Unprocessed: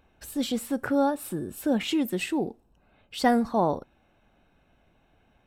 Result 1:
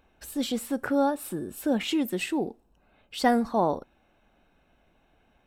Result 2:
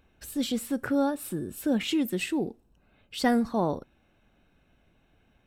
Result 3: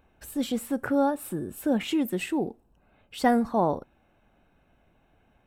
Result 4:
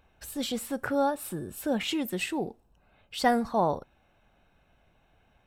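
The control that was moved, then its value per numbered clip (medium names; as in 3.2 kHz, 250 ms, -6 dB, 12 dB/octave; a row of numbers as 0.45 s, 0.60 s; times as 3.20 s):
peaking EQ, frequency: 110 Hz, 810 Hz, 4.6 kHz, 280 Hz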